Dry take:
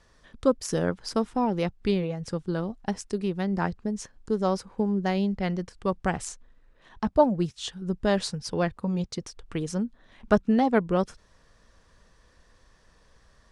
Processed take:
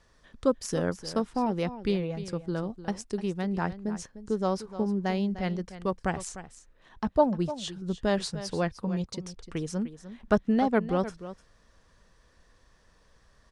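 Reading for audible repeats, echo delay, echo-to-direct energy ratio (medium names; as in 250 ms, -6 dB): 1, 301 ms, -13.5 dB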